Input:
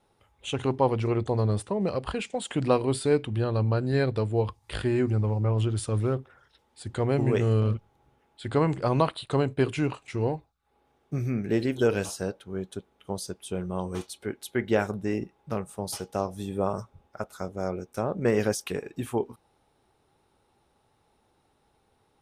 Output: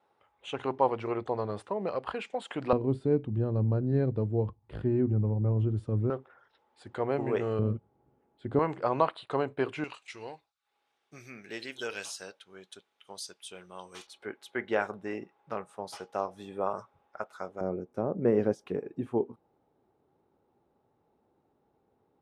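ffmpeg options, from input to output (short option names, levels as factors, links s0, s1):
-af "asetnsamples=n=441:p=0,asendcmd='2.73 bandpass f 190;6.1 bandpass f 860;7.59 bandpass f 280;8.59 bandpass f 950;9.84 bandpass f 3700;14.07 bandpass f 1200;17.61 bandpass f 320',bandpass=f=1000:t=q:w=0.67:csg=0"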